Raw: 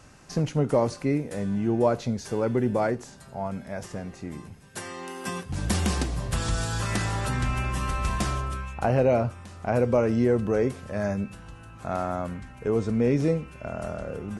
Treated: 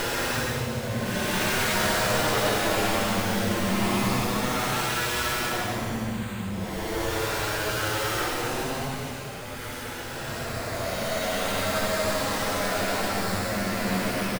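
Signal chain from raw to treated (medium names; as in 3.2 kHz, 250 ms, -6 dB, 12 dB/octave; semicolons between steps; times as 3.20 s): integer overflow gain 20 dB; feedback delay 1007 ms, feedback 39%, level -3 dB; Paulstretch 10×, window 0.10 s, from 10.81 s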